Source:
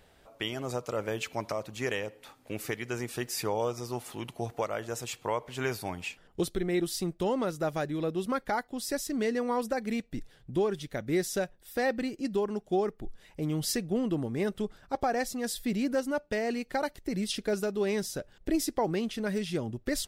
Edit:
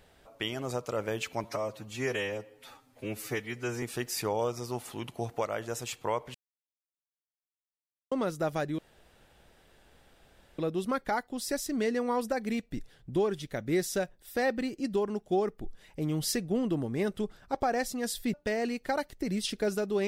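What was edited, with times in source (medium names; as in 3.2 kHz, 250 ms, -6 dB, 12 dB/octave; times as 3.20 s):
1.44–3.03 s: stretch 1.5×
5.55–7.32 s: mute
7.99 s: insert room tone 1.80 s
15.74–16.19 s: delete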